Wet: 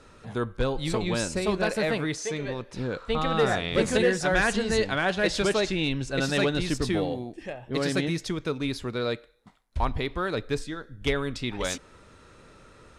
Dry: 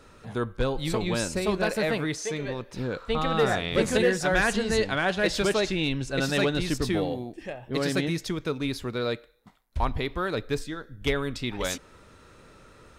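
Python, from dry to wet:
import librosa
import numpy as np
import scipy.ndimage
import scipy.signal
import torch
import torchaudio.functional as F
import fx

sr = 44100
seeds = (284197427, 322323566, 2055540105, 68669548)

y = scipy.signal.sosfilt(scipy.signal.butter(4, 11000.0, 'lowpass', fs=sr, output='sos'), x)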